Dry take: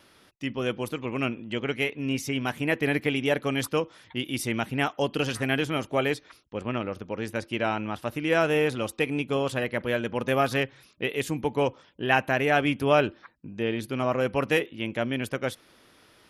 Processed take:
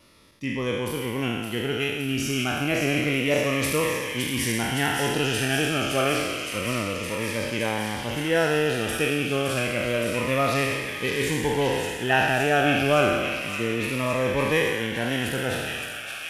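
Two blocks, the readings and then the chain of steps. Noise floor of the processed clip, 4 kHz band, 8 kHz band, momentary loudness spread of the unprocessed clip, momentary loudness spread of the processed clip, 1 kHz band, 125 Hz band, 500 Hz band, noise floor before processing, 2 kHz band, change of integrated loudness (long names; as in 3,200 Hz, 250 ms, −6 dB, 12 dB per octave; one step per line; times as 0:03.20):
−34 dBFS, +6.0 dB, +10.0 dB, 9 LU, 7 LU, +2.5 dB, +3.5 dB, +2.0 dB, −59 dBFS, +4.0 dB, +3.0 dB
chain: peak hold with a decay on every bin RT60 1.53 s
low-shelf EQ 87 Hz +7 dB
delay with a high-pass on its return 566 ms, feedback 83%, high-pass 1,900 Hz, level −5 dB
phaser whose notches keep moving one way falling 0.29 Hz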